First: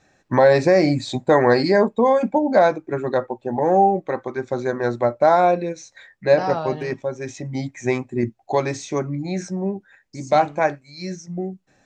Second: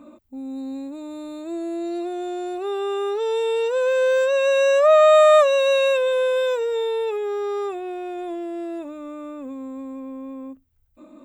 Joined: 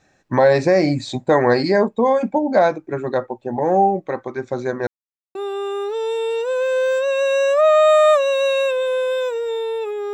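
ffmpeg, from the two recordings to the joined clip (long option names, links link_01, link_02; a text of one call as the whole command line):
ffmpeg -i cue0.wav -i cue1.wav -filter_complex "[0:a]apad=whole_dur=10.13,atrim=end=10.13,asplit=2[link_01][link_02];[link_01]atrim=end=4.87,asetpts=PTS-STARTPTS,afade=type=out:start_time=4.866:duration=0.004:curve=hsin[link_03];[link_02]atrim=start=4.87:end=5.35,asetpts=PTS-STARTPTS,volume=0[link_04];[1:a]atrim=start=2.61:end=7.39,asetpts=PTS-STARTPTS,afade=type=in:duration=0.004:curve=hsin[link_05];[link_03][link_04][link_05]concat=n=3:v=0:a=1" out.wav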